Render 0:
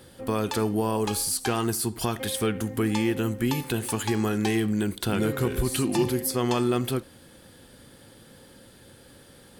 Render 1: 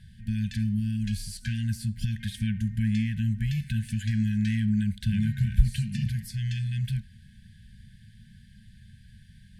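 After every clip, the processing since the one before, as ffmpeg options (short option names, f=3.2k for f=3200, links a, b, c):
-af "aemphasis=mode=reproduction:type=bsi,afftfilt=real='re*(1-between(b*sr/4096,230,1500))':imag='im*(1-between(b*sr/4096,230,1500))':win_size=4096:overlap=0.75,volume=-4.5dB"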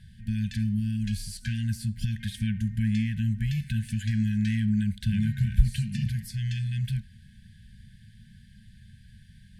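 -af anull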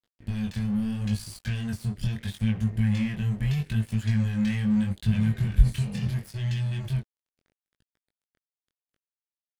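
-af "aeval=exprs='sgn(val(0))*max(abs(val(0))-0.00841,0)':c=same,flanger=delay=17.5:depth=6.9:speed=0.76,volume=5dB"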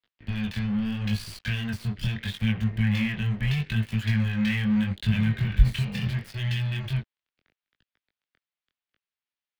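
-filter_complex "[0:a]acrossover=split=190|630|3300[a][b][c][d];[c]crystalizer=i=8.5:c=0[e];[d]acrusher=bits=5:dc=4:mix=0:aa=0.000001[f];[a][b][e][f]amix=inputs=4:normalize=0"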